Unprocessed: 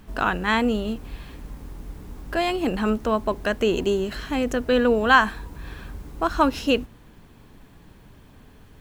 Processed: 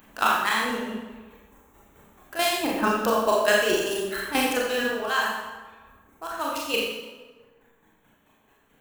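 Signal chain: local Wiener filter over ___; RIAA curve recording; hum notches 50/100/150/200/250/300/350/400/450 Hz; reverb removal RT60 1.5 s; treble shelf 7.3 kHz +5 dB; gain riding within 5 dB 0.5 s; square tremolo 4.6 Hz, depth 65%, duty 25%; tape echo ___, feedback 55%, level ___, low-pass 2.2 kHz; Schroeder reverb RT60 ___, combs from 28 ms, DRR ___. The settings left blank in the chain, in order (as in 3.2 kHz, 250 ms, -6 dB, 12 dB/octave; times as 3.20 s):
9 samples, 159 ms, -11 dB, 0.83 s, -3.5 dB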